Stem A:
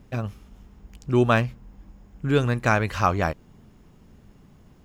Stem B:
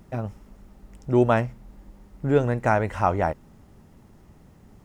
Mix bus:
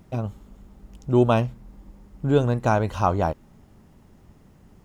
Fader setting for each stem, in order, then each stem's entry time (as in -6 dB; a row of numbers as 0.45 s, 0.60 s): -6.5 dB, -2.0 dB; 0.00 s, 0.00 s